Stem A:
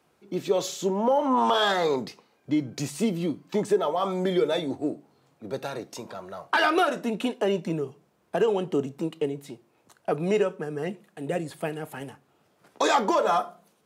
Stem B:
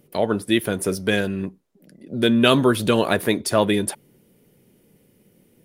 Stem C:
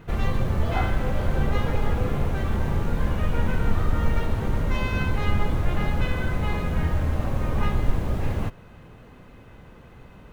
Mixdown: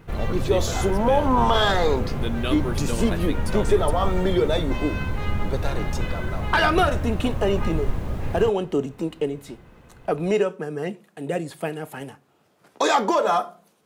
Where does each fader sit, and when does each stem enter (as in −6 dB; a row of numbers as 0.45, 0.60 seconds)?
+2.5, −12.5, −2.5 decibels; 0.00, 0.00, 0.00 seconds